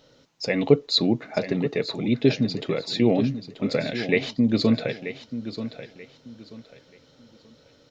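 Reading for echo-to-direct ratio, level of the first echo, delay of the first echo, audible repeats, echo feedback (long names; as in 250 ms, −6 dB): −11.0 dB, −11.5 dB, 934 ms, 3, 27%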